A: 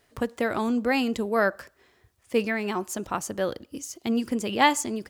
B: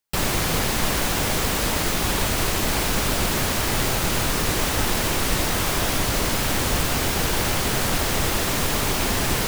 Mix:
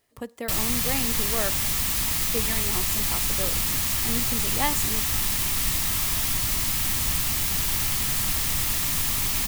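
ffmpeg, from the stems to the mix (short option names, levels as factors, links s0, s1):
-filter_complex "[0:a]volume=0.422[s0];[1:a]equalizer=f=480:w=0.87:g=-15,adelay=350,volume=0.596[s1];[s0][s1]amix=inputs=2:normalize=0,highshelf=f=8300:g=10,bandreject=f=1500:w=8.4"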